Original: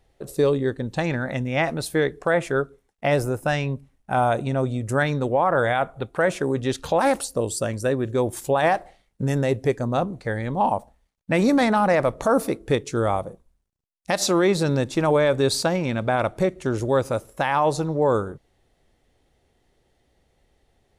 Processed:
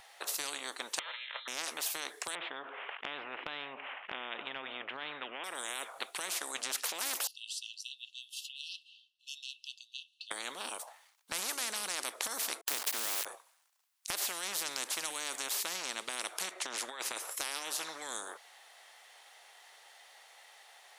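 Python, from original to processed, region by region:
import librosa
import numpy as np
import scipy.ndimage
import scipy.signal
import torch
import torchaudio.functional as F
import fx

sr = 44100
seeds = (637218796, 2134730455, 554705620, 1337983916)

y = fx.chain(x, sr, fx.differentiator(),
    fx.comb(ms=2.7, depth=0.86),
    fx.freq_invert(carrier_hz=3900), at=(0.99, 1.48))
y = fx.chain(y, sr, fx.steep_lowpass(hz=3100.0, slope=72),
    fx.env_flatten(amount_pct=50), at=(2.35, 5.44))
y = fx.chain(y, sr, fx.brickwall_highpass(low_hz=2600.0),
    fx.air_absorb(metres=330.0), at=(7.27, 10.31))
y = fx.chain(y, sr, fx.hum_notches(base_hz=60, count=4),
    fx.sample_gate(floor_db=-36.0),
    fx.band_squash(depth_pct=40), at=(12.61, 13.25))
y = fx.chain(y, sr, fx.high_shelf(hz=3700.0, db=-11.0),
    fx.over_compress(threshold_db=-24.0, ratio=-0.5), at=(16.51, 17.31))
y = scipy.signal.sosfilt(scipy.signal.butter(4, 840.0, 'highpass', fs=sr, output='sos'), y)
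y = fx.dynamic_eq(y, sr, hz=2000.0, q=0.89, threshold_db=-40.0, ratio=4.0, max_db=-7)
y = fx.spectral_comp(y, sr, ratio=10.0)
y = y * 10.0 ** (-2.5 / 20.0)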